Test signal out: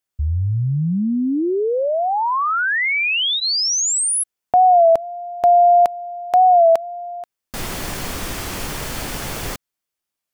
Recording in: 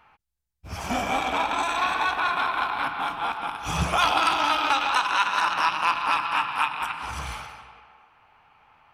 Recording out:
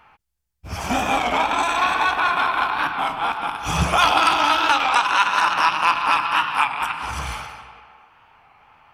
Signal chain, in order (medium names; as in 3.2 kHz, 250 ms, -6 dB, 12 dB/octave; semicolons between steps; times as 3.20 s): band-stop 3.9 kHz, Q 20; warped record 33 1/3 rpm, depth 100 cents; trim +5 dB